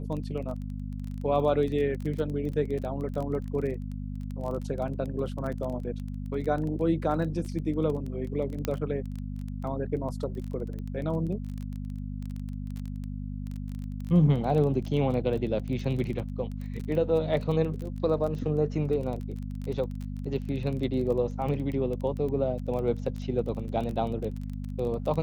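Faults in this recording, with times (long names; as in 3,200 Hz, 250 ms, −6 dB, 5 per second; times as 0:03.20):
surface crackle 20 per second −33 dBFS
mains hum 50 Hz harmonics 5 −35 dBFS
0:08.65: click −14 dBFS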